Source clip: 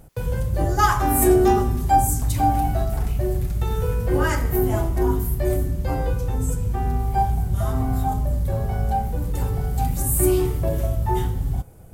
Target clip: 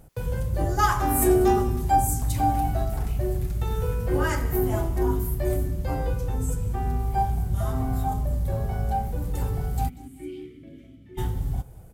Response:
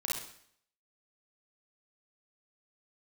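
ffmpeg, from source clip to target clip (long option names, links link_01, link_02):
-filter_complex "[0:a]asplit=3[link_01][link_02][link_03];[link_01]afade=type=out:start_time=9.88:duration=0.02[link_04];[link_02]asplit=3[link_05][link_06][link_07];[link_05]bandpass=frequency=270:width_type=q:width=8,volume=0dB[link_08];[link_06]bandpass=frequency=2290:width_type=q:width=8,volume=-6dB[link_09];[link_07]bandpass=frequency=3010:width_type=q:width=8,volume=-9dB[link_10];[link_08][link_09][link_10]amix=inputs=3:normalize=0,afade=type=in:start_time=9.88:duration=0.02,afade=type=out:start_time=11.17:duration=0.02[link_11];[link_03]afade=type=in:start_time=11.17:duration=0.02[link_12];[link_04][link_11][link_12]amix=inputs=3:normalize=0,aecho=1:1:190|380|570:0.0944|0.0368|0.0144,volume=-3.5dB"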